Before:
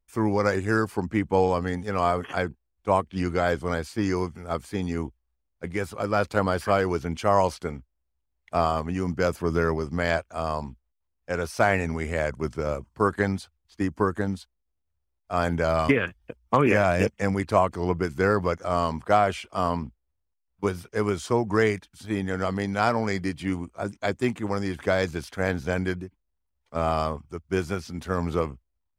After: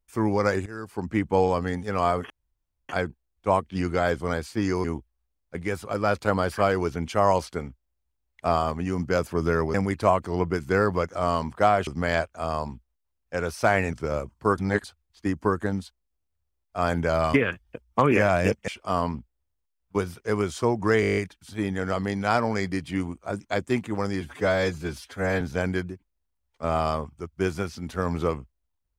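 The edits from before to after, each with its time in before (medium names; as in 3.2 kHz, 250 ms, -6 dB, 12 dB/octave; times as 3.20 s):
0.66–1.09 s: fade in quadratic, from -16.5 dB
2.30 s: insert room tone 0.59 s
4.25–4.93 s: delete
11.89–12.48 s: delete
13.13–13.39 s: reverse
17.23–19.36 s: move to 9.83 s
21.69 s: stutter 0.02 s, 9 plays
24.73–25.53 s: stretch 1.5×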